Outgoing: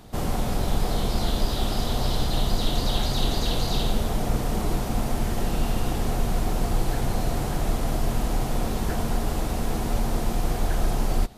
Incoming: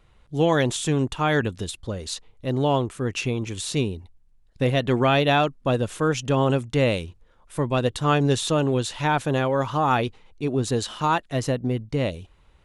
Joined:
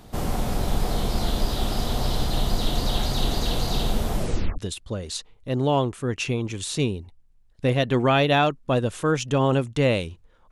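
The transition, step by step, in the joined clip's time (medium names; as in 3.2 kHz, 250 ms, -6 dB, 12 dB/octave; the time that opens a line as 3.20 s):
outgoing
4.16 s: tape stop 0.42 s
4.58 s: go over to incoming from 1.55 s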